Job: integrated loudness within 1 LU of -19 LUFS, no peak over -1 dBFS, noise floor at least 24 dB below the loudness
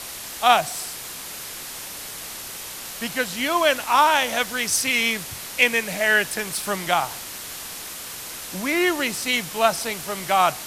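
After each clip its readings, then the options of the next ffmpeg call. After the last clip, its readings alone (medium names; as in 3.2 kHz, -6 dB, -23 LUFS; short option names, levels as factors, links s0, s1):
noise floor -35 dBFS; noise floor target -47 dBFS; loudness -22.5 LUFS; peak level -2.5 dBFS; loudness target -19.0 LUFS
-> -af "afftdn=nr=12:nf=-35"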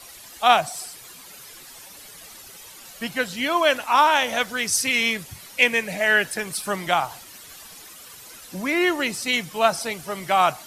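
noise floor -44 dBFS; noise floor target -46 dBFS
-> -af "afftdn=nr=6:nf=-44"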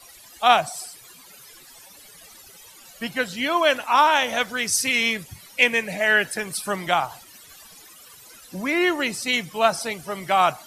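noise floor -48 dBFS; loudness -21.5 LUFS; peak level -2.5 dBFS; loudness target -19.0 LUFS
-> -af "volume=1.33,alimiter=limit=0.891:level=0:latency=1"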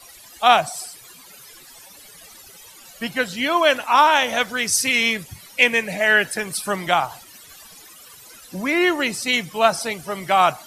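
loudness -19.0 LUFS; peak level -1.0 dBFS; noise floor -45 dBFS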